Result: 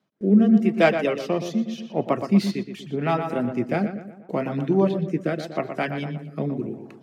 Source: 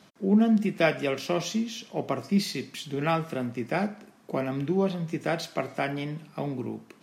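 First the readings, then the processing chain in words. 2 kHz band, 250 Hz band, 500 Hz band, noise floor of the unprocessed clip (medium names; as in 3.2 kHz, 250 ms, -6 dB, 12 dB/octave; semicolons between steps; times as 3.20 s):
+2.5 dB, +5.5 dB, +5.0 dB, -57 dBFS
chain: tracing distortion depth 0.033 ms; high-pass 77 Hz; gate with hold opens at -42 dBFS; reverb removal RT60 1 s; treble shelf 3.1 kHz -9.5 dB; filtered feedback delay 120 ms, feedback 51%, low-pass 2.9 kHz, level -8 dB; rotary cabinet horn 0.8 Hz; trim +7 dB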